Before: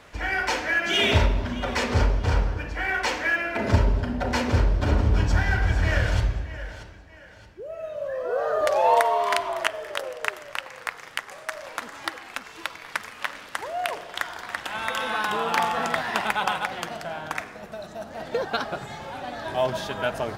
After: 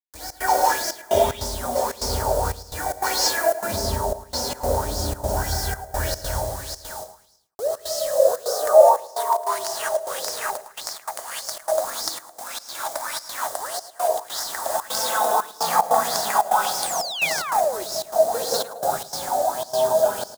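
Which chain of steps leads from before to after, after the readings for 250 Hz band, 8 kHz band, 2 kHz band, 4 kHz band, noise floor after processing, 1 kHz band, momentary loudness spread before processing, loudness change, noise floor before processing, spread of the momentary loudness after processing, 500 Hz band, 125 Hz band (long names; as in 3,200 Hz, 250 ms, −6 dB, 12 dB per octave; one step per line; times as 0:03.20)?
−5.5 dB, +14.0 dB, −4.5 dB, +2.5 dB, −47 dBFS, +4.5 dB, 13 LU, +3.0 dB, −45 dBFS, 11 LU, +7.0 dB, −7.5 dB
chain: bit reduction 6 bits
drawn EQ curve 120 Hz 0 dB, 740 Hz +5 dB, 1,800 Hz −11 dB, 2,700 Hz −16 dB, 4,200 Hz +1 dB, 8,000 Hz +10 dB
reverb whose tail is shaped and stops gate 230 ms rising, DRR −5 dB
automatic gain control gain up to 5 dB
gate pattern "xxx.xxxxx..xx.xx" 149 BPM −60 dB
sound drawn into the spectrogram fall, 0:16.82–0:17.84, 340–9,900 Hz −23 dBFS
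low-shelf EQ 360 Hz −7 dB
on a send: repeating echo 108 ms, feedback 47%, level −14 dB
on the sum: auto-filter bell 1.7 Hz 590–5,400 Hz +15 dB
level −8 dB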